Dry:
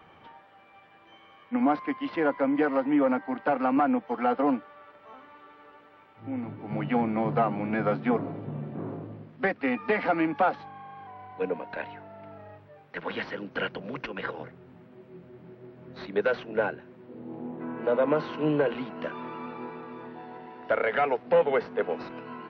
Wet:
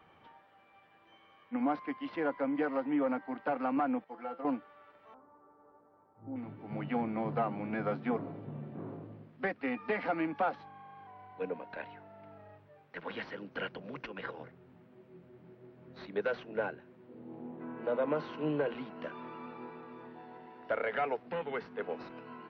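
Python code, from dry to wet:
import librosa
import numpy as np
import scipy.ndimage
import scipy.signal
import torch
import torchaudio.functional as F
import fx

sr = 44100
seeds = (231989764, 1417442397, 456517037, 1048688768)

y = fx.comb_fb(x, sr, f0_hz=170.0, decay_s=0.21, harmonics='all', damping=0.0, mix_pct=80, at=(4.04, 4.45))
y = fx.lowpass(y, sr, hz=1100.0, slope=24, at=(5.14, 6.36))
y = fx.peak_eq(y, sr, hz=580.0, db=fx.line((21.28, -12.5), (21.82, -5.5)), octaves=0.9, at=(21.28, 21.82), fade=0.02)
y = y * librosa.db_to_amplitude(-7.5)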